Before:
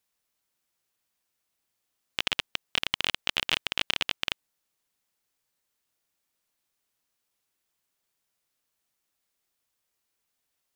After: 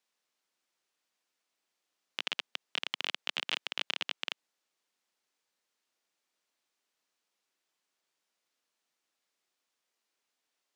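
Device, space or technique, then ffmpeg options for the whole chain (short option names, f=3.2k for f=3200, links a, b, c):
DJ mixer with the lows and highs turned down: -filter_complex "[0:a]acrossover=split=200 7800:gain=0.0708 1 0.224[a][b][c];[a][b][c]amix=inputs=3:normalize=0,alimiter=limit=-15dB:level=0:latency=1:release=61"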